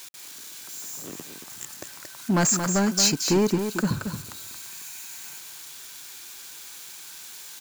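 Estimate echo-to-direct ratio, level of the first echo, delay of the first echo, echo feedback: -7.5 dB, -7.5 dB, 226 ms, no regular repeats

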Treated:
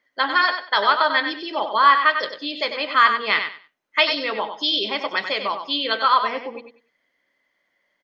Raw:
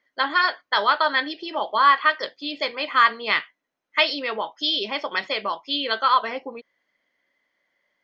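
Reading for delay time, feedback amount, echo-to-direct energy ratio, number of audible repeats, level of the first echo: 96 ms, 21%, -8.0 dB, 2, -8.0 dB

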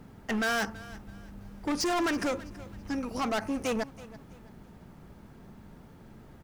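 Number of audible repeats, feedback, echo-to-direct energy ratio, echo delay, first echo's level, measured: 2, 32%, -18.0 dB, 329 ms, -18.5 dB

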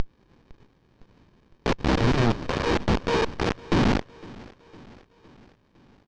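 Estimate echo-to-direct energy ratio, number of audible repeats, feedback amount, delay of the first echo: -20.5 dB, 3, 57%, 508 ms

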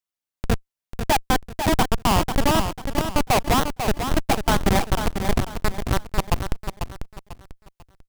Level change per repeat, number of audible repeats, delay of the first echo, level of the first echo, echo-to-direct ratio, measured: -10.0 dB, 3, 494 ms, -7.5 dB, -7.0 dB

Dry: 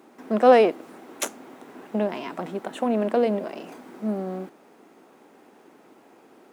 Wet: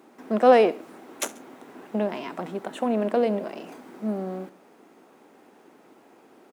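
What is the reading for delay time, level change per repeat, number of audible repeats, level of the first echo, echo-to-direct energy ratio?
68 ms, -4.5 dB, 2, -21.5 dB, -20.0 dB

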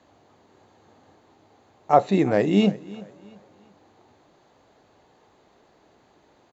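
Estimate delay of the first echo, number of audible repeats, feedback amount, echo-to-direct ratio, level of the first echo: 343 ms, 2, 34%, -19.5 dB, -20.0 dB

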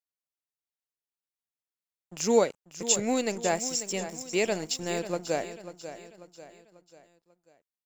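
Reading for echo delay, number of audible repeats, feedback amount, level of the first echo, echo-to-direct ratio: 542 ms, 4, 44%, -12.0 dB, -11.0 dB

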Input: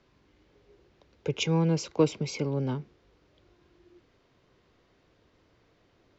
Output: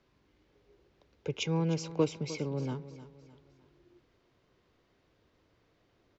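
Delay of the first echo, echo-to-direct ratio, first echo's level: 306 ms, -14.0 dB, -14.5 dB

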